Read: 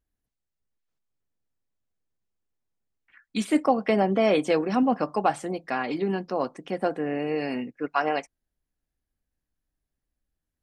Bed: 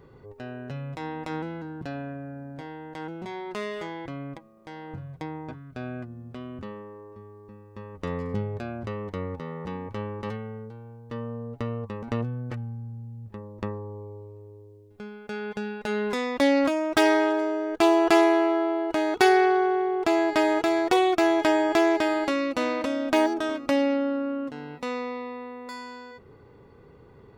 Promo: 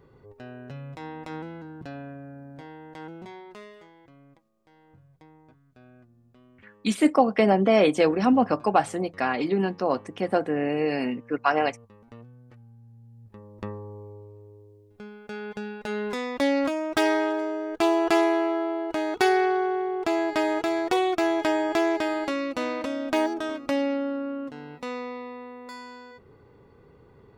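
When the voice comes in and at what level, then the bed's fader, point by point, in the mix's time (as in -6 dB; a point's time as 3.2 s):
3.50 s, +2.5 dB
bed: 3.18 s -4 dB
3.92 s -18 dB
12.54 s -18 dB
13.7 s -2.5 dB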